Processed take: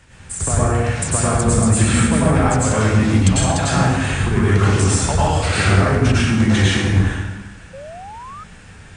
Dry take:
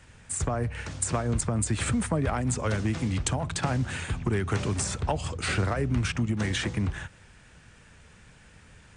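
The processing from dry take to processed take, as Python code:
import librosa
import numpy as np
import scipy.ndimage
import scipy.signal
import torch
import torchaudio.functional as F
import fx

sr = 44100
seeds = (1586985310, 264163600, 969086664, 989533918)

y = fx.rev_plate(x, sr, seeds[0], rt60_s=1.2, hf_ratio=0.75, predelay_ms=85, drr_db=-8.0)
y = fx.spec_paint(y, sr, seeds[1], shape='rise', start_s=7.73, length_s=0.71, low_hz=520.0, high_hz=1300.0, level_db=-38.0)
y = y * librosa.db_to_amplitude(3.5)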